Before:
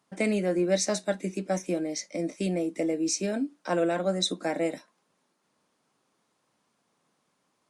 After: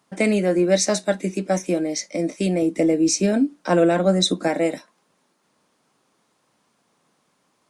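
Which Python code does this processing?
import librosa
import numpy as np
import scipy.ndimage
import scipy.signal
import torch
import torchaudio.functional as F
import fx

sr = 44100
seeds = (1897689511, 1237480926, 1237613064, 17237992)

y = fx.low_shelf(x, sr, hz=270.0, db=7.0, at=(2.62, 4.48))
y = y * 10.0 ** (7.0 / 20.0)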